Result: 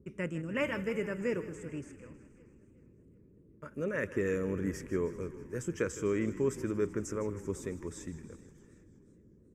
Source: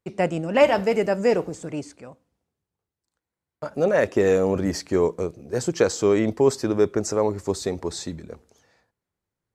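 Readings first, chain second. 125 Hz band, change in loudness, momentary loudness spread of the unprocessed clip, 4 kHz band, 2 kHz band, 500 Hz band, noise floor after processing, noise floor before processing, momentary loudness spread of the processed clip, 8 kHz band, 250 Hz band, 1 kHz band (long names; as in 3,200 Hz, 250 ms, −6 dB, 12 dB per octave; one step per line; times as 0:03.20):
−8.5 dB, −12.5 dB, 14 LU, −17.0 dB, −8.5 dB, −14.0 dB, −61 dBFS, below −85 dBFS, 14 LU, −13.0 dB, −10.0 dB, −18.0 dB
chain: noise in a band 43–430 Hz −50 dBFS
phaser with its sweep stopped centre 1,800 Hz, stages 4
echo with shifted repeats 158 ms, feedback 65%, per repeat −30 Hz, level −15 dB
feedback echo with a swinging delay time 377 ms, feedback 46%, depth 55 cents, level −21 dB
level −8.5 dB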